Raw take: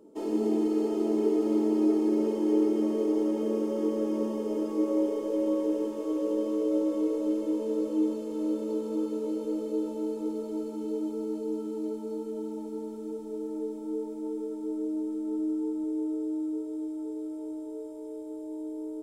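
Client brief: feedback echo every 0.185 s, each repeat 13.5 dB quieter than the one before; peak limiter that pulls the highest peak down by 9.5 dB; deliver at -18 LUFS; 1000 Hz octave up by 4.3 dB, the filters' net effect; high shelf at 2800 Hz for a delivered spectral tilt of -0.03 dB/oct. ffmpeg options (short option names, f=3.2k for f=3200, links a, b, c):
-af "equalizer=f=1k:t=o:g=6,highshelf=f=2.8k:g=-8,alimiter=limit=-24dB:level=0:latency=1,aecho=1:1:185|370:0.211|0.0444,volume=15dB"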